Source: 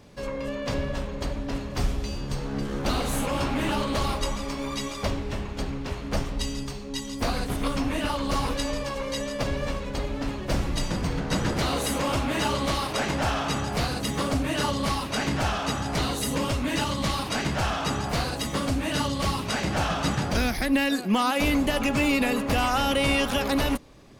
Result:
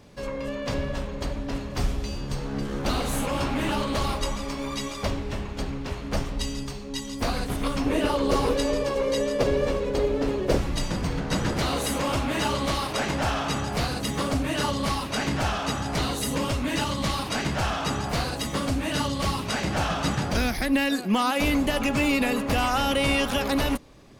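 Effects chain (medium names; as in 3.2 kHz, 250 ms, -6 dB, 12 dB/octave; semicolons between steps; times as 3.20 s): 7.86–10.58 s: peaking EQ 430 Hz +14 dB 0.73 oct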